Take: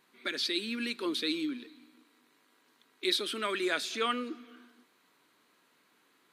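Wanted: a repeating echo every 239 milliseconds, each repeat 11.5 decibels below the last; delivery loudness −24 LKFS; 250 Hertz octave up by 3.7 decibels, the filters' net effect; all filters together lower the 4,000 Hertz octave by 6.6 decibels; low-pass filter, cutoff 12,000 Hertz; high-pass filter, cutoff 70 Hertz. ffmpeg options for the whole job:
ffmpeg -i in.wav -af "highpass=70,lowpass=12000,equalizer=frequency=250:width_type=o:gain=5,equalizer=frequency=4000:width_type=o:gain=-7.5,aecho=1:1:239|478|717:0.266|0.0718|0.0194,volume=9dB" out.wav

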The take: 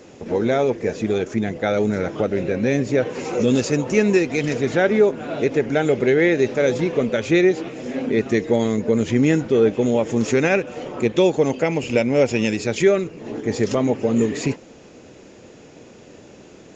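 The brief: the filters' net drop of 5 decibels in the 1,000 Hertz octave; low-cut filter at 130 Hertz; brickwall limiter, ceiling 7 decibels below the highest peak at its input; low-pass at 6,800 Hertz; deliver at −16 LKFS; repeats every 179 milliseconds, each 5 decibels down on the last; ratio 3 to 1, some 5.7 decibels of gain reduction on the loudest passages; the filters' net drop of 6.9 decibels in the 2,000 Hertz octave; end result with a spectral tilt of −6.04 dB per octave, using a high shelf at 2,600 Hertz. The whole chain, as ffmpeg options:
ffmpeg -i in.wav -af "highpass=130,lowpass=6800,equalizer=frequency=1000:width_type=o:gain=-6,equalizer=frequency=2000:width_type=o:gain=-4.5,highshelf=frequency=2600:gain=-5,acompressor=threshold=-20dB:ratio=3,alimiter=limit=-17.5dB:level=0:latency=1,aecho=1:1:179|358|537|716|895|1074|1253:0.562|0.315|0.176|0.0988|0.0553|0.031|0.0173,volume=10dB" out.wav

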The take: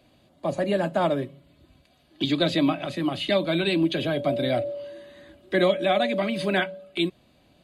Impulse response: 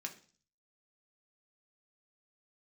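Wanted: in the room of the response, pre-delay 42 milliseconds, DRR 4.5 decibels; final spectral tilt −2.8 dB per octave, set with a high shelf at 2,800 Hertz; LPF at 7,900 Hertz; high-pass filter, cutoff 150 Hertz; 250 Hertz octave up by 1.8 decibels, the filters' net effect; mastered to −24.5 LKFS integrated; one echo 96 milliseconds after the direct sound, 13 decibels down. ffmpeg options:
-filter_complex "[0:a]highpass=150,lowpass=7900,equalizer=frequency=250:width_type=o:gain=3,highshelf=frequency=2800:gain=9,aecho=1:1:96:0.224,asplit=2[link_01][link_02];[1:a]atrim=start_sample=2205,adelay=42[link_03];[link_02][link_03]afir=irnorm=-1:irlink=0,volume=-3dB[link_04];[link_01][link_04]amix=inputs=2:normalize=0,volume=-2.5dB"

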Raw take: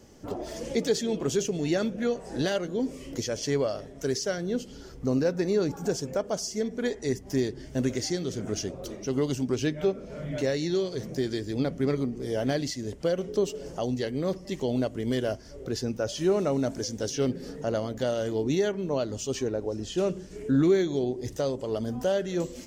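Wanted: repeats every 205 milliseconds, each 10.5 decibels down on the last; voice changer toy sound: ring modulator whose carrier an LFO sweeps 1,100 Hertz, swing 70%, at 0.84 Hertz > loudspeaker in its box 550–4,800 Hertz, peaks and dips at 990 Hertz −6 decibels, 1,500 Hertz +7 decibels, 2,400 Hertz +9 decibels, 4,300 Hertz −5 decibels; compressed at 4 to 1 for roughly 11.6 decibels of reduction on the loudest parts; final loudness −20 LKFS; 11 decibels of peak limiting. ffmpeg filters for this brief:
ffmpeg -i in.wav -af "acompressor=threshold=-33dB:ratio=4,alimiter=level_in=8.5dB:limit=-24dB:level=0:latency=1,volume=-8.5dB,aecho=1:1:205|410|615:0.299|0.0896|0.0269,aeval=exprs='val(0)*sin(2*PI*1100*n/s+1100*0.7/0.84*sin(2*PI*0.84*n/s))':channel_layout=same,highpass=550,equalizer=frequency=990:width_type=q:width=4:gain=-6,equalizer=frequency=1500:width_type=q:width=4:gain=7,equalizer=frequency=2400:width_type=q:width=4:gain=9,equalizer=frequency=4300:width_type=q:width=4:gain=-5,lowpass=frequency=4800:width=0.5412,lowpass=frequency=4800:width=1.3066,volume=19.5dB" out.wav

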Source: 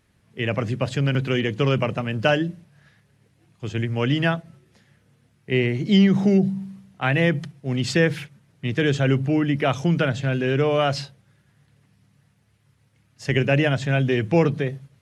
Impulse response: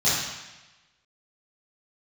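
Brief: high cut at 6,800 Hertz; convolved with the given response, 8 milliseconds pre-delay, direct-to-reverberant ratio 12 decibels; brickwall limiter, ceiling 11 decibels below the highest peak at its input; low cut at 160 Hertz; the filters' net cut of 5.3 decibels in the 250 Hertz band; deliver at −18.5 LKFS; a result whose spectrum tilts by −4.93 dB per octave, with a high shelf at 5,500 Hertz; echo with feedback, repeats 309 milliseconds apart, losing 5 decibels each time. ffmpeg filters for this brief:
-filter_complex "[0:a]highpass=160,lowpass=6800,equalizer=frequency=250:width_type=o:gain=-6,highshelf=frequency=5500:gain=-7.5,alimiter=limit=-19dB:level=0:latency=1,aecho=1:1:309|618|927|1236|1545|1854|2163:0.562|0.315|0.176|0.0988|0.0553|0.031|0.0173,asplit=2[link_01][link_02];[1:a]atrim=start_sample=2205,adelay=8[link_03];[link_02][link_03]afir=irnorm=-1:irlink=0,volume=-27.5dB[link_04];[link_01][link_04]amix=inputs=2:normalize=0,volume=10dB"

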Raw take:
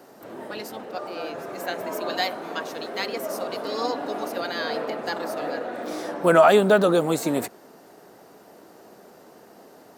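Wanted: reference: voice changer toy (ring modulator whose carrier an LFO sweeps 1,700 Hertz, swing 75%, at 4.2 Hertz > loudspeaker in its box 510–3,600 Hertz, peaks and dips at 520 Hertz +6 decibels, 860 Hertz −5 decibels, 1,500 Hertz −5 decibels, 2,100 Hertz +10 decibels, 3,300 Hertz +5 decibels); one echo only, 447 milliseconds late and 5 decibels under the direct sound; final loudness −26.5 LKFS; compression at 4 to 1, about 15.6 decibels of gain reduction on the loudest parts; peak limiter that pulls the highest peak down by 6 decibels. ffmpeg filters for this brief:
ffmpeg -i in.wav -af "acompressor=threshold=-30dB:ratio=4,alimiter=level_in=0.5dB:limit=-24dB:level=0:latency=1,volume=-0.5dB,aecho=1:1:447:0.562,aeval=exprs='val(0)*sin(2*PI*1700*n/s+1700*0.75/4.2*sin(2*PI*4.2*n/s))':channel_layout=same,highpass=510,equalizer=frequency=520:width_type=q:width=4:gain=6,equalizer=frequency=860:width_type=q:width=4:gain=-5,equalizer=frequency=1500:width_type=q:width=4:gain=-5,equalizer=frequency=2100:width_type=q:width=4:gain=10,equalizer=frequency=3300:width_type=q:width=4:gain=5,lowpass=frequency=3600:width=0.5412,lowpass=frequency=3600:width=1.3066,volume=5dB" out.wav

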